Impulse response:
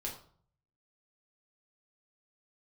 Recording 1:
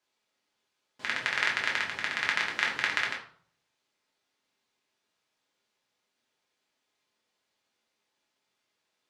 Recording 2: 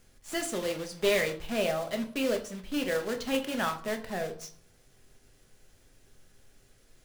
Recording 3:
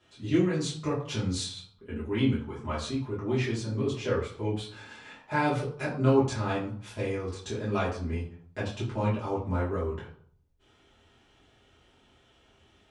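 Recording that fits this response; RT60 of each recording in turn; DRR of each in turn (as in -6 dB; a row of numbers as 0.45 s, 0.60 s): 1; 0.50 s, 0.50 s, 0.50 s; -2.5 dB, 4.5 dB, -9.5 dB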